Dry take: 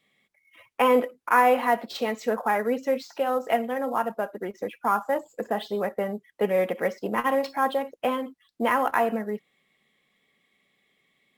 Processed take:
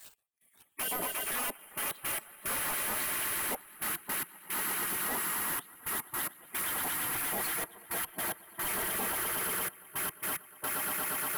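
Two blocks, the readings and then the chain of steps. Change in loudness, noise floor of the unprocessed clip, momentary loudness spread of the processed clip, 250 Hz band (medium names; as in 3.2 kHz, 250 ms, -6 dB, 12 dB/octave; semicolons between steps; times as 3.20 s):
-6.5 dB, -72 dBFS, 5 LU, -15.0 dB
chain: random holes in the spectrogram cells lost 35%; resonant high shelf 7.7 kHz +13.5 dB, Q 3; on a send: echo with a slow build-up 118 ms, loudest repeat 8, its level -9 dB; on the sum: reverse; upward compressor, threshold -29 dBFS; reverse; waveshaping leveller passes 2; peak limiter -16.5 dBFS, peak gain reduction 11 dB; small resonant body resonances 660/3100 Hz, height 7 dB, ringing for 95 ms; trance gate "x..xxxxxxxx..x." 110 bpm -24 dB; spectral gate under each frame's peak -15 dB weak; overload inside the chain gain 34 dB; trim +3 dB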